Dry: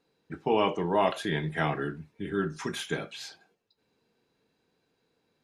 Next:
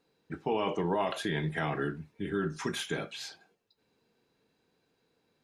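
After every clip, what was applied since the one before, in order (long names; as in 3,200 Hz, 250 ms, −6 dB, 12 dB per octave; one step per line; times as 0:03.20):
brickwall limiter −20.5 dBFS, peak gain reduction 8 dB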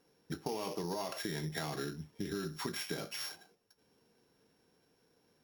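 samples sorted by size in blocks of 8 samples
downward compressor 6 to 1, threshold −38 dBFS, peak gain reduction 12 dB
level +2.5 dB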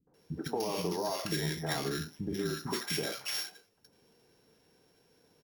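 three-band delay without the direct sound lows, mids, highs 70/140 ms, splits 240/1,200 Hz
level +6 dB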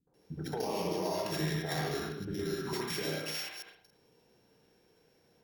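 delay that plays each chunk backwards 125 ms, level −5 dB
convolution reverb RT60 0.45 s, pre-delay 68 ms, DRR 0 dB
level −4 dB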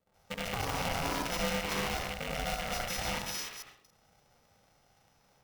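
loose part that buzzes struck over −42 dBFS, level −27 dBFS
ring modulator with a square carrier 350 Hz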